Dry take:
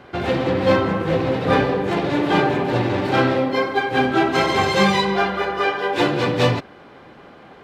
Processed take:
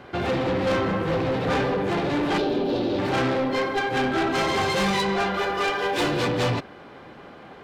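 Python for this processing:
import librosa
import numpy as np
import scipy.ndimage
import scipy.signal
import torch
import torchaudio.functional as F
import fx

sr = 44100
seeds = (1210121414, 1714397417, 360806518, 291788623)

y = fx.high_shelf(x, sr, hz=4700.0, db=7.5, at=(5.34, 6.28))
y = 10.0 ** (-19.5 / 20.0) * np.tanh(y / 10.0 ** (-19.5 / 20.0))
y = fx.graphic_eq(y, sr, hz=(125, 250, 500, 1000, 2000, 4000, 8000), db=(-11, 4, 3, -7, -11, 8, -10), at=(2.38, 2.99))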